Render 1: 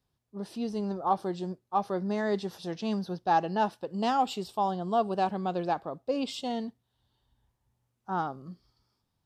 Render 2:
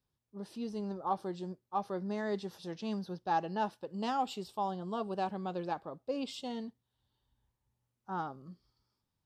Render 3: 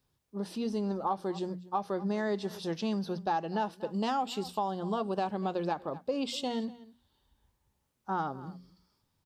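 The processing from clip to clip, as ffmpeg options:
-af "bandreject=f=700:w=12,volume=0.501"
-af "bandreject=f=60:t=h:w=6,bandreject=f=120:t=h:w=6,bandreject=f=180:t=h:w=6,bandreject=f=240:t=h:w=6,aecho=1:1:241:0.0794,acompressor=threshold=0.0141:ratio=4,volume=2.66"

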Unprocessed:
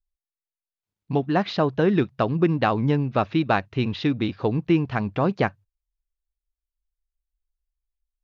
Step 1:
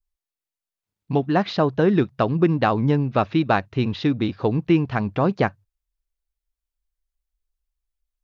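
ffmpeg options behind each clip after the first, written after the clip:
-af "adynamicequalizer=threshold=0.00708:dfrequency=2600:dqfactor=1.3:tfrequency=2600:tqfactor=1.3:attack=5:release=100:ratio=0.375:range=2:mode=cutabove:tftype=bell,volume=1.26"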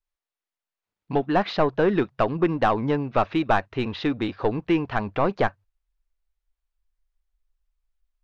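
-filter_complex "[0:a]asplit=2[s0][s1];[s1]highpass=f=720:p=1,volume=5.01,asoftclip=type=tanh:threshold=0.531[s2];[s0][s2]amix=inputs=2:normalize=0,lowpass=f=1700:p=1,volume=0.501,asubboost=boost=7:cutoff=53,volume=0.708"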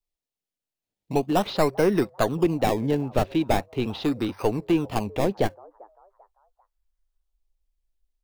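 -filter_complex "[0:a]acrossover=split=240|890|2200[s0][s1][s2][s3];[s1]asplit=4[s4][s5][s6][s7];[s5]adelay=394,afreqshift=99,volume=0.0794[s8];[s6]adelay=788,afreqshift=198,volume=0.0295[s9];[s7]adelay=1182,afreqshift=297,volume=0.0108[s10];[s4][s8][s9][s10]amix=inputs=4:normalize=0[s11];[s2]acrusher=samples=24:mix=1:aa=0.000001:lfo=1:lforange=24:lforate=0.4[s12];[s0][s11][s12][s3]amix=inputs=4:normalize=0"

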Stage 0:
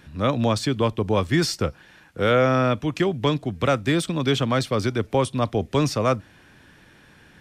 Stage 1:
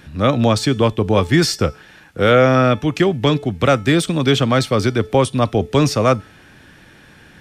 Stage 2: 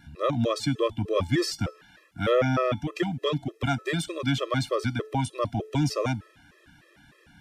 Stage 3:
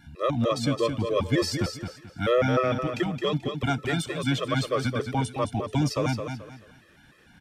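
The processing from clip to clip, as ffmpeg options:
-af "bandreject=f=1000:w=16,bandreject=f=433.7:t=h:w=4,bandreject=f=867.4:t=h:w=4,bandreject=f=1301.1:t=h:w=4,bandreject=f=1734.8:t=h:w=4,bandreject=f=2168.5:t=h:w=4,bandreject=f=2602.2:t=h:w=4,bandreject=f=3035.9:t=h:w=4,bandreject=f=3469.6:t=h:w=4,bandreject=f=3903.3:t=h:w=4,bandreject=f=4337:t=h:w=4,bandreject=f=4770.7:t=h:w=4,bandreject=f=5204.4:t=h:w=4,bandreject=f=5638.1:t=h:w=4,bandreject=f=6071.8:t=h:w=4,bandreject=f=6505.5:t=h:w=4,bandreject=f=6939.2:t=h:w=4,bandreject=f=7372.9:t=h:w=4,bandreject=f=7806.6:t=h:w=4,bandreject=f=8240.3:t=h:w=4,bandreject=f=8674:t=h:w=4,bandreject=f=9107.7:t=h:w=4,bandreject=f=9541.4:t=h:w=4,bandreject=f=9975.1:t=h:w=4,bandreject=f=10408.8:t=h:w=4,bandreject=f=10842.5:t=h:w=4,bandreject=f=11276.2:t=h:w=4,bandreject=f=11709.9:t=h:w=4,bandreject=f=12143.6:t=h:w=4,bandreject=f=12577.3:t=h:w=4,bandreject=f=13011:t=h:w=4,bandreject=f=13444.7:t=h:w=4,bandreject=f=13878.4:t=h:w=4,volume=2.11"
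-af "afftfilt=real='re*gt(sin(2*PI*3.3*pts/sr)*(1-2*mod(floor(b*sr/1024/340),2)),0)':imag='im*gt(sin(2*PI*3.3*pts/sr)*(1-2*mod(floor(b*sr/1024/340),2)),0)':win_size=1024:overlap=0.75,volume=0.398"
-af "aecho=1:1:217|434|651:0.447|0.125|0.035"

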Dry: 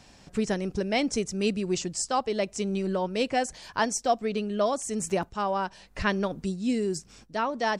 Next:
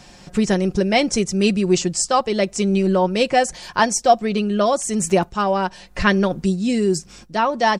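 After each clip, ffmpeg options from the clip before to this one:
-af "aecho=1:1:5.6:0.41,volume=2.66"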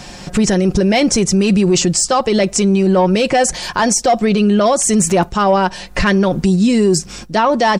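-af "acontrast=52,alimiter=limit=0.266:level=0:latency=1:release=32,volume=1.88"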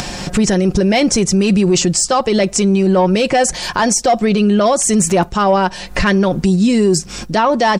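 -af "acompressor=mode=upward:threshold=0.158:ratio=2.5"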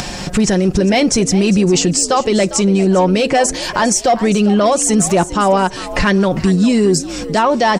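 -filter_complex "[0:a]asplit=4[s0][s1][s2][s3];[s1]adelay=402,afreqshift=77,volume=0.178[s4];[s2]adelay=804,afreqshift=154,volume=0.0624[s5];[s3]adelay=1206,afreqshift=231,volume=0.0219[s6];[s0][s4][s5][s6]amix=inputs=4:normalize=0"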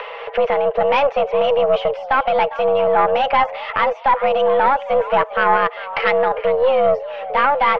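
-af "highpass=f=180:t=q:w=0.5412,highpass=f=180:t=q:w=1.307,lowpass=f=2700:t=q:w=0.5176,lowpass=f=2700:t=q:w=0.7071,lowpass=f=2700:t=q:w=1.932,afreqshift=280,aeval=exprs='0.794*(cos(1*acos(clip(val(0)/0.794,-1,1)))-cos(1*PI/2))+0.2*(cos(2*acos(clip(val(0)/0.794,-1,1)))-cos(2*PI/2))':c=same,volume=0.75"

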